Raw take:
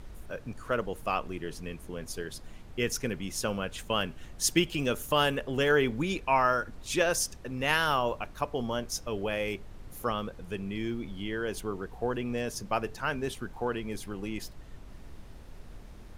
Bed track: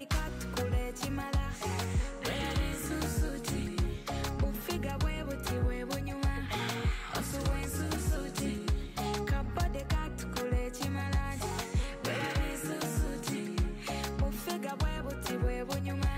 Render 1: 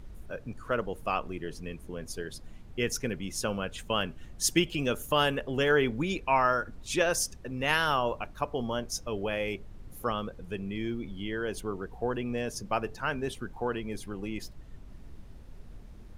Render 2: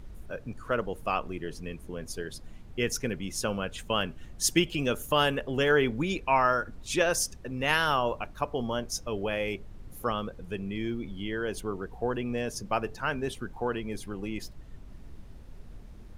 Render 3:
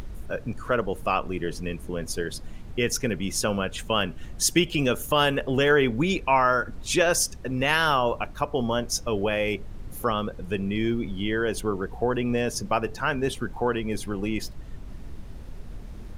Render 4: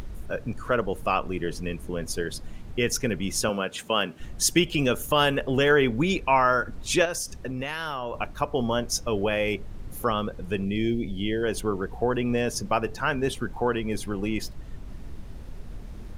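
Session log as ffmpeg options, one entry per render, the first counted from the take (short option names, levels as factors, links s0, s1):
-af "afftdn=nr=6:nf=-48"
-af "volume=1.12"
-filter_complex "[0:a]asplit=2[s0][s1];[s1]alimiter=limit=0.0794:level=0:latency=1:release=262,volume=1.26[s2];[s0][s2]amix=inputs=2:normalize=0,acompressor=mode=upward:threshold=0.02:ratio=2.5"
-filter_complex "[0:a]asettb=1/sr,asplit=3[s0][s1][s2];[s0]atrim=end=3.494[s3];[s1]atrim=start=3.49:end=4.2,asetpts=PTS-STARTPTS,afade=t=in:d=0.004:c=qsin,afade=t=out:st=0.706:d=0.004:c=qsin,highpass=200[s4];[s2]atrim=start=4.196[s5];[s3][s4]acrossfade=d=0.004:c1=hsin:c2=qsin[s6];[s6][s5]acrossfade=d=0.004:c1=qsin:c2=hsin,asettb=1/sr,asplit=3[s7][s8][s9];[s7]atrim=end=7.054[s10];[s8]atrim=start=7.05:end=8.14,asetpts=PTS-STARTPTS,afade=t=in:d=0.004:c=qsin,afade=t=out:st=1.086:d=0.004:c=qsin,acompressor=threshold=0.0447:ratio=6:attack=3.2:release=140:knee=1:detection=peak[s11];[s9]atrim=start=8.136[s12];[s10][s11]acrossfade=d=0.004:c1=hsin:c2=qsin[s13];[s13][s12]acrossfade=d=0.004:c1=qsin:c2=hsin,asplit=3[s14][s15][s16];[s14]afade=t=out:st=10.64:d=0.02[s17];[s15]asuperstop=centerf=1200:order=4:qfactor=0.97,afade=t=in:st=10.64:d=0.02,afade=t=out:st=11.42:d=0.02[s18];[s16]afade=t=in:st=11.42:d=0.02[s19];[s17][s18][s19]amix=inputs=3:normalize=0"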